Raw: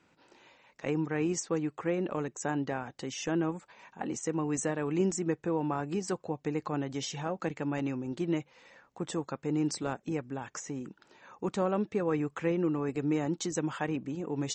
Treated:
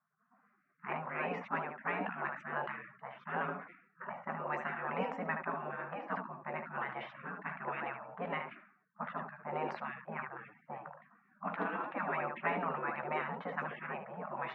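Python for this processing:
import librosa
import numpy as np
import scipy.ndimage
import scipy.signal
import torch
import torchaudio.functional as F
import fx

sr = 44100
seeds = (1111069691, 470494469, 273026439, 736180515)

y = fx.recorder_agc(x, sr, target_db=-24.0, rise_db_per_s=8.3, max_gain_db=30)
y = fx.air_absorb(y, sr, metres=460.0)
y = fx.room_early_taps(y, sr, ms=(14, 75), db=(-8.5, -9.5))
y = fx.env_lowpass(y, sr, base_hz=650.0, full_db=-22.5)
y = scipy.signal.sosfilt(scipy.signal.butter(6, 290.0, 'highpass', fs=sr, output='sos'), y)
y = fx.peak_eq(y, sr, hz=4000.0, db=-14.0, octaves=2.2)
y = fx.spec_gate(y, sr, threshold_db=-25, keep='weak')
y = fx.env_lowpass(y, sr, base_hz=1100.0, full_db=-43.5)
y = fx.sustainer(y, sr, db_per_s=90.0)
y = y * 10.0 ** (18.0 / 20.0)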